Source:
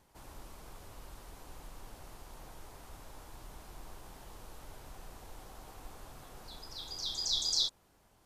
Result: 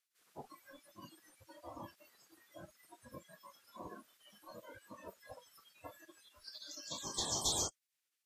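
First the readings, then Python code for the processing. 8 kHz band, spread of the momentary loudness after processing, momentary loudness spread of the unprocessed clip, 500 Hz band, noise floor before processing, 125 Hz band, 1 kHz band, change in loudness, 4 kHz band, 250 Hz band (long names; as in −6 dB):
+2.0 dB, 23 LU, 22 LU, +4.0 dB, −67 dBFS, −2.5 dB, +2.0 dB, −7.5 dB, −8.0 dB, +3.5 dB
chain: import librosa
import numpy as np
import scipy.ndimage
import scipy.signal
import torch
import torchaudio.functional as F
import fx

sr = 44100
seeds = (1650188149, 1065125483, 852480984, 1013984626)

y = fx.spec_gate(x, sr, threshold_db=-20, keep='weak')
y = fx.noise_reduce_blind(y, sr, reduce_db=24)
y = y * librosa.db_to_amplitude(12.0)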